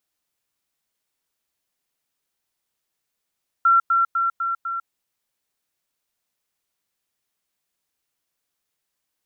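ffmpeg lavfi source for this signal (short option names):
-f lavfi -i "aevalsrc='pow(10,(-12-3*floor(t/0.25))/20)*sin(2*PI*1360*t)*clip(min(mod(t,0.25),0.15-mod(t,0.25))/0.005,0,1)':d=1.25:s=44100"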